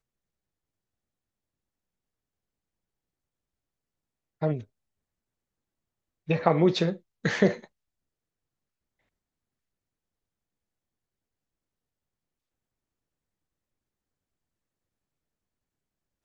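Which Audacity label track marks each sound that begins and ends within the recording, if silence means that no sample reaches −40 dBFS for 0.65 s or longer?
4.420000	4.630000	sound
6.280000	7.640000	sound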